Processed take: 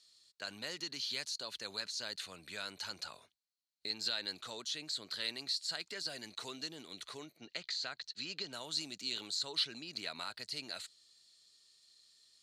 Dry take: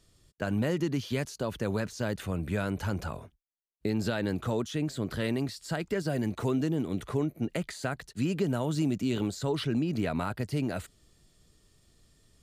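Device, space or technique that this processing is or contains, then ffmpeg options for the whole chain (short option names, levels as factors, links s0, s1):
piezo pickup straight into a mixer: -filter_complex "[0:a]lowpass=5700,aderivative,asettb=1/sr,asplit=3[s0][s1][s2];[s0]atrim=end=7.374[s3];[s1]atrim=start=7.37:end=8.53,asetpts=PTS-STARTPTS,afade=t=in:d=0.004:c=qsin,afade=t=out:st=1.156:d=0.004:c=qsin,lowpass=f=6300:w=0.5412,lowpass=f=6300:w=1.3066[s4];[s2]atrim=start=8.526[s5];[s3][s4]acrossfade=d=0.004:c1=hsin:c2=qsin[s6];[s6][s5]acrossfade=d=0.004:c1=qsin:c2=hsin,equalizer=f=4200:w=4.8:g=13,volume=1.88"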